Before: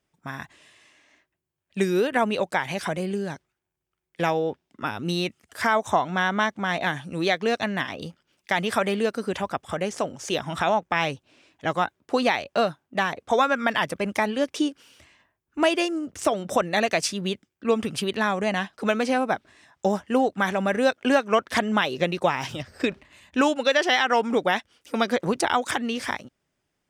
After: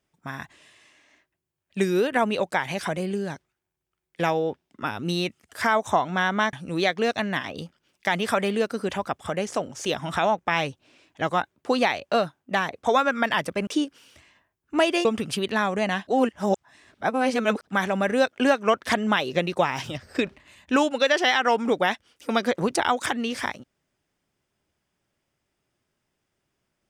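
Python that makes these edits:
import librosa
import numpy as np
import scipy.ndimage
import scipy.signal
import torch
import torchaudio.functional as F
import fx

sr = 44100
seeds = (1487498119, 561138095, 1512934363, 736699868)

y = fx.edit(x, sr, fx.cut(start_s=6.53, length_s=0.44),
    fx.cut(start_s=14.11, length_s=0.4),
    fx.cut(start_s=15.89, length_s=1.81),
    fx.reverse_span(start_s=18.72, length_s=1.6), tone=tone)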